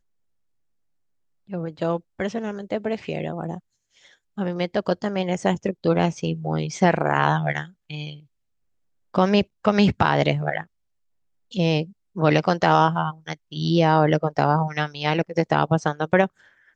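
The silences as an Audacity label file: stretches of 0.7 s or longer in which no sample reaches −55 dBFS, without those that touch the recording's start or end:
8.260000	9.140000	silence
10.670000	11.510000	silence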